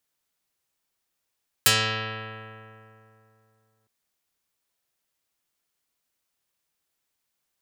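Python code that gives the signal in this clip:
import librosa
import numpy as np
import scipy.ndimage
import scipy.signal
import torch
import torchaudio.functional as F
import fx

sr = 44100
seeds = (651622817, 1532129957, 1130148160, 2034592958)

y = fx.pluck(sr, length_s=2.21, note=45, decay_s=2.91, pick=0.37, brightness='dark')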